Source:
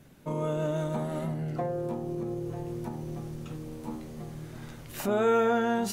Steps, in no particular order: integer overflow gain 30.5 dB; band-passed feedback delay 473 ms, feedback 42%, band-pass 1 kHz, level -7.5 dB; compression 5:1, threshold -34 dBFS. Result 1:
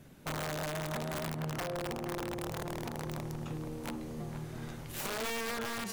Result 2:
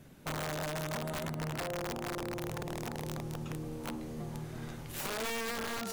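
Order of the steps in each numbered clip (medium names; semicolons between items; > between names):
compression > integer overflow > band-passed feedback delay; band-passed feedback delay > compression > integer overflow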